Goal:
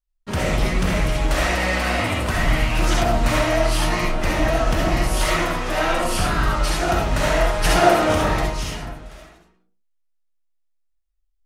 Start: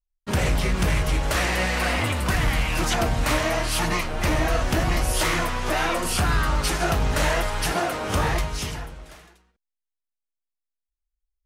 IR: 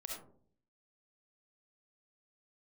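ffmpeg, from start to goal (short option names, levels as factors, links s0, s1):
-filter_complex "[0:a]highshelf=f=9000:g=-5.5,asettb=1/sr,asplit=3[s0][s1][s2];[s0]atrim=end=7.644[s3];[s1]atrim=start=7.64:end=8.13,asetpts=PTS-STARTPTS,afade=t=in:d=0.004:c=qsin,afade=t=out:st=0.486:d=0.004:c=qsin,acontrast=58[s4];[s2]atrim=start=8.126[s5];[s3][s4]acrossfade=d=0.004:c1=hsin:c2=qsin[s6];[s6][s5]acrossfade=d=0.004:c1=qsin:c2=hsin[s7];[1:a]atrim=start_sample=2205,afade=t=out:st=0.32:d=0.01,atrim=end_sample=14553[s8];[s7][s8]afir=irnorm=-1:irlink=0,volume=1.68"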